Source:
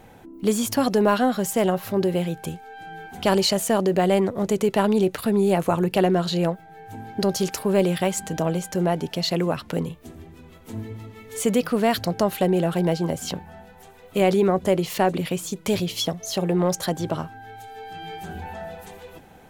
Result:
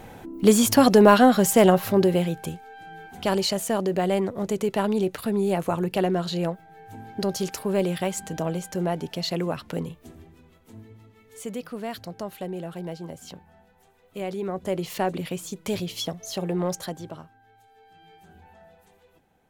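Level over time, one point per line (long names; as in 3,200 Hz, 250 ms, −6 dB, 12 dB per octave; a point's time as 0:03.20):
0:01.74 +5 dB
0:02.81 −4 dB
0:10.11 −4 dB
0:10.80 −12.5 dB
0:14.33 −12.5 dB
0:14.85 −5 dB
0:16.72 −5 dB
0:17.38 −17 dB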